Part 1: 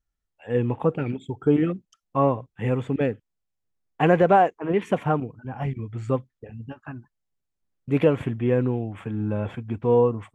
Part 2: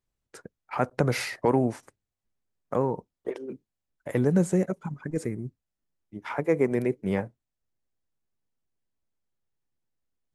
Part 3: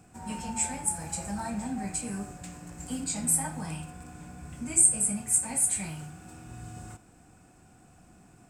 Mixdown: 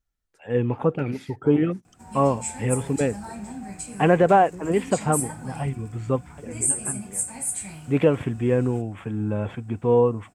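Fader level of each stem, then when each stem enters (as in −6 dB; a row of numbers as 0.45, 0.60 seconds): +0.5, −17.5, −2.5 decibels; 0.00, 0.00, 1.85 seconds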